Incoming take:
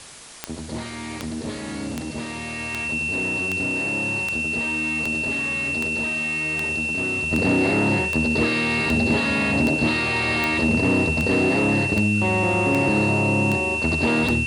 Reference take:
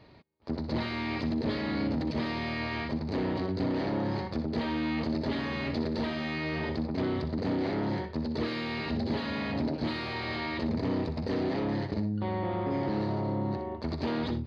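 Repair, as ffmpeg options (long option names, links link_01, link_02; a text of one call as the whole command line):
ffmpeg -i in.wav -af "adeclick=threshold=4,bandreject=frequency=2700:width=30,afwtdn=0.01,asetnsamples=nb_out_samples=441:pad=0,asendcmd='7.31 volume volume -9.5dB',volume=0dB" out.wav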